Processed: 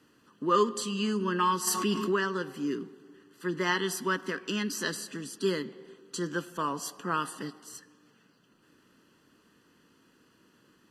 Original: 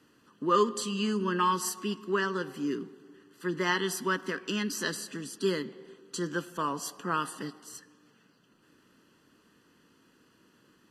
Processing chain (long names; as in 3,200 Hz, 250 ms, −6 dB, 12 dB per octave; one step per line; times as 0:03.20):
0:01.67–0:02.16: envelope flattener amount 70%